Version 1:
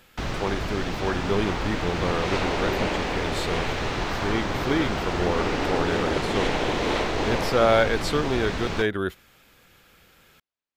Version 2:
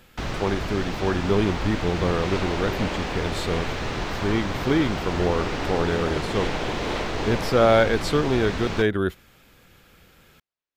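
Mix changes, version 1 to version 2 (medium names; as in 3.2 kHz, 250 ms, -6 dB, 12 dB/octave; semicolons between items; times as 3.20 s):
speech: add bass shelf 410 Hz +6 dB; second sound -4.0 dB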